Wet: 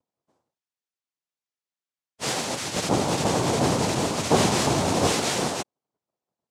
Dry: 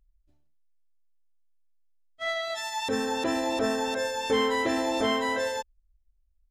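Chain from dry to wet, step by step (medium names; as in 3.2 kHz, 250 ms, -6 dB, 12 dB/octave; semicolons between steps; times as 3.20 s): noise-vocoded speech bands 2; 2.57–5.07 s: bass shelf 270 Hz +7.5 dB; trim +2.5 dB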